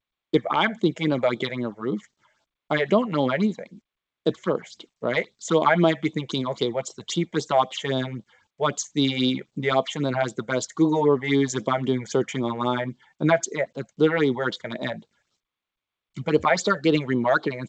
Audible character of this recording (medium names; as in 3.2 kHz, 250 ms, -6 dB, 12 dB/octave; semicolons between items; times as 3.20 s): a quantiser's noise floor 12-bit, dither none; phasing stages 6, 3.8 Hz, lowest notch 280–2000 Hz; G.722